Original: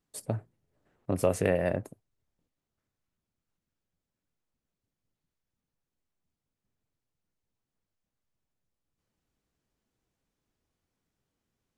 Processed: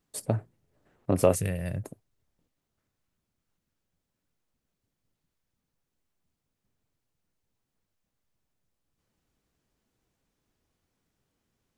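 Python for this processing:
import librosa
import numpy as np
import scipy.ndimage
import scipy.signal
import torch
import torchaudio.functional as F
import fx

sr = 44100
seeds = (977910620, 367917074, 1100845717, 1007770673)

y = fx.curve_eq(x, sr, hz=(140.0, 260.0, 800.0, 11000.0), db=(0, -13, -19, 5), at=(1.35, 1.84))
y = y * 10.0 ** (4.5 / 20.0)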